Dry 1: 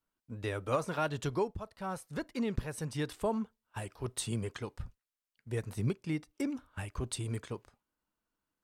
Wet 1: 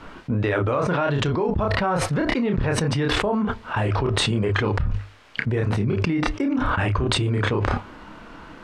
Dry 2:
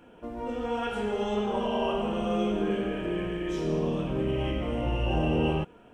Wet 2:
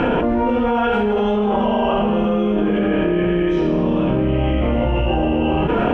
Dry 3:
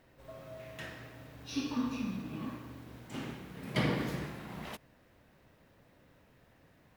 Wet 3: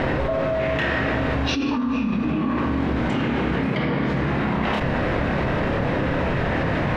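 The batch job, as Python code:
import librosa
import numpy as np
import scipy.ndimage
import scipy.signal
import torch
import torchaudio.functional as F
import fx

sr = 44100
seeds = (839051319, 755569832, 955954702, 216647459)

p1 = scipy.signal.sosfilt(scipy.signal.butter(2, 2600.0, 'lowpass', fs=sr, output='sos'), x)
p2 = fx.hum_notches(p1, sr, base_hz=50, count=2)
p3 = fx.rider(p2, sr, range_db=4, speed_s=0.5)
p4 = p2 + (p3 * librosa.db_to_amplitude(2.0))
p5 = fx.doubler(p4, sr, ms=29.0, db=-5.0)
p6 = fx.env_flatten(p5, sr, amount_pct=100)
y = p6 * librosa.db_to_amplitude(-1.5)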